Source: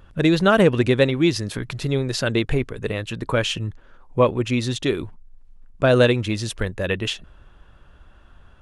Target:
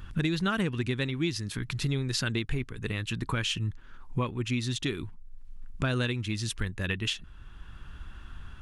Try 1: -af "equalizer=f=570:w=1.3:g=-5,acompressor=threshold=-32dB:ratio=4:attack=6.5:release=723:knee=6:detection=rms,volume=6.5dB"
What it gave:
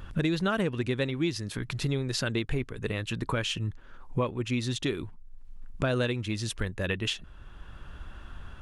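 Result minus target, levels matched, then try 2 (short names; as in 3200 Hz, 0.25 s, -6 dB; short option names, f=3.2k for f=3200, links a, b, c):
500 Hz band +4.5 dB
-af "equalizer=f=570:w=1.3:g=-15,acompressor=threshold=-32dB:ratio=4:attack=6.5:release=723:knee=6:detection=rms,volume=6.5dB"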